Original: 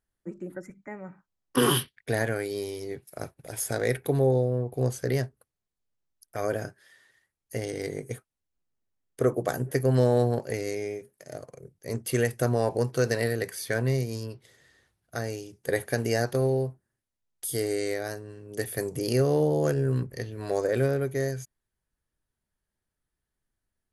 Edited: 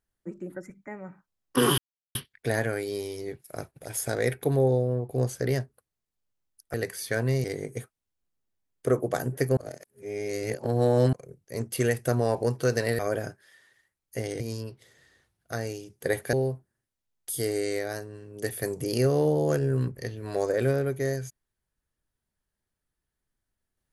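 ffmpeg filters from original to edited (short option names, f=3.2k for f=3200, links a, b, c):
-filter_complex "[0:a]asplit=9[a][b][c][d][e][f][g][h][i];[a]atrim=end=1.78,asetpts=PTS-STARTPTS,afade=t=out:st=1.776:d=0.004:c=hsin,apad=pad_dur=0.37[j];[b]atrim=start=1.78:end=6.372,asetpts=PTS-STARTPTS,afade=t=in:d=0.004:c=hsin[k];[c]atrim=start=13.328:end=14.032[l];[d]atrim=start=7.778:end=9.912[m];[e]atrim=start=9.908:end=11.472,asetpts=PTS-STARTPTS,areverse[n];[f]atrim=start=11.468:end=13.332[o];[g]atrim=start=6.368:end=7.782[p];[h]atrim=start=14.028:end=15.962[q];[i]atrim=start=16.478[r];[j][k]concat=n=2:v=0:a=1[s];[s][l]acrossfade=d=0.004:c1=hsin:c2=hsin[t];[t][m]acrossfade=d=0.004:c1=hsin:c2=hsin[u];[u][n]acrossfade=d=0.004:c1=hsin:c2=hsin[v];[v][o]acrossfade=d=0.004:c1=hsin:c2=hsin[w];[w][p]acrossfade=d=0.004:c1=hsin:c2=hsin[x];[x][q]acrossfade=d=0.004:c1=hsin:c2=hsin[y];[y][r]acrossfade=d=0.004:c1=hsin:c2=hsin"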